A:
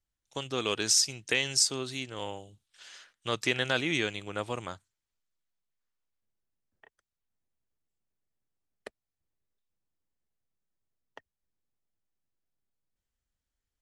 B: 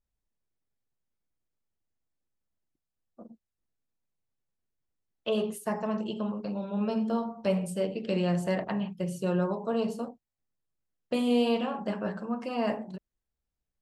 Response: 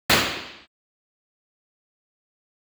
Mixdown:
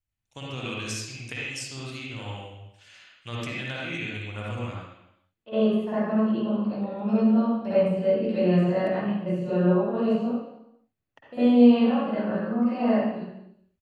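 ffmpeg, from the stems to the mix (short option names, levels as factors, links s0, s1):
-filter_complex "[0:a]equalizer=f=100:t=o:w=0.67:g=7,equalizer=f=400:t=o:w=0.67:g=-7,equalizer=f=2500:t=o:w=0.67:g=9,acompressor=threshold=0.0501:ratio=5,equalizer=f=2800:w=0.34:g=-7,volume=0.708,asplit=3[s0][s1][s2];[s1]volume=0.0841[s3];[1:a]deesser=1,highshelf=f=4400:g=-11,adelay=200,volume=0.376,asplit=2[s4][s5];[s5]volume=0.2[s6];[s2]apad=whole_len=617943[s7];[s4][s7]sidechaincompress=threshold=0.00126:ratio=3:attack=23:release=771[s8];[2:a]atrim=start_sample=2205[s9];[s3][s6]amix=inputs=2:normalize=0[s10];[s10][s9]afir=irnorm=-1:irlink=0[s11];[s0][s8][s11]amix=inputs=3:normalize=0"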